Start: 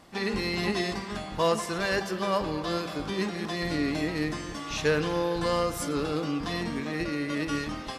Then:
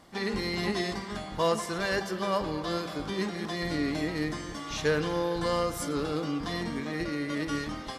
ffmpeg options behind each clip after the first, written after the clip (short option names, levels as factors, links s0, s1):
-af "bandreject=f=2600:w=12,volume=0.841"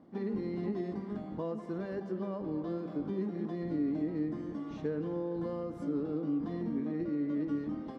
-af "acompressor=threshold=0.0251:ratio=2.5,bandpass=f=260:t=q:w=1.5:csg=0,volume=1.58"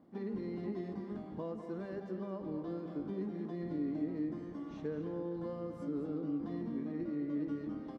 -af "aecho=1:1:214:0.335,volume=0.596"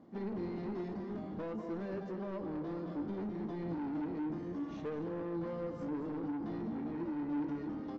-af "aresample=16000,asoftclip=type=tanh:threshold=0.0106,aresample=44100,flanger=delay=9:depth=4.8:regen=74:speed=0.61:shape=sinusoidal,volume=2.82"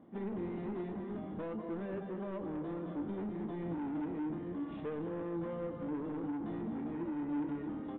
-af "aresample=8000,aresample=44100"